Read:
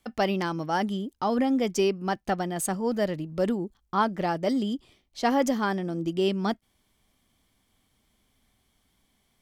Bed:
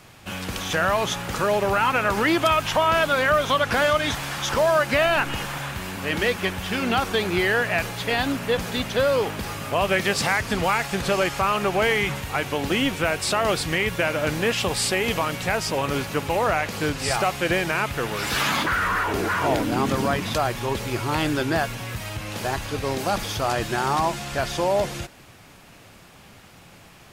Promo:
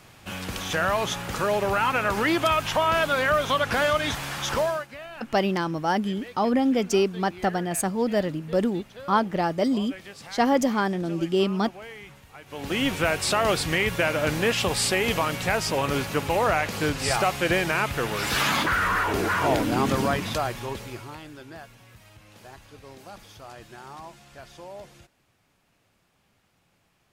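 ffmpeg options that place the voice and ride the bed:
-filter_complex "[0:a]adelay=5150,volume=1.33[s0];[1:a]volume=7.5,afade=t=out:st=4.56:d=0.31:silence=0.125893,afade=t=in:st=12.46:d=0.46:silence=0.1,afade=t=out:st=19.98:d=1.23:silence=0.112202[s1];[s0][s1]amix=inputs=2:normalize=0"

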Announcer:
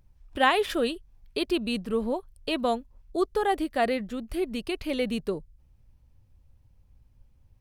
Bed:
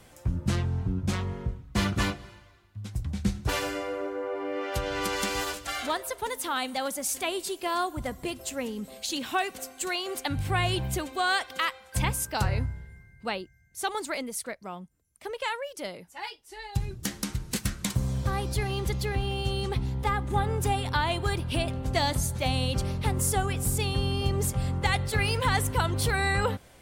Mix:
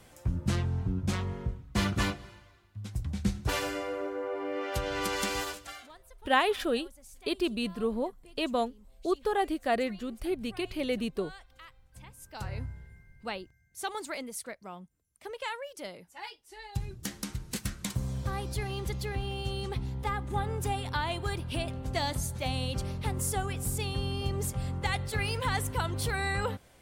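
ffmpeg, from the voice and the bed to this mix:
-filter_complex "[0:a]adelay=5900,volume=0.708[s0];[1:a]volume=6.68,afade=t=out:st=5.33:d=0.56:silence=0.0841395,afade=t=in:st=12.16:d=0.7:silence=0.11885[s1];[s0][s1]amix=inputs=2:normalize=0"

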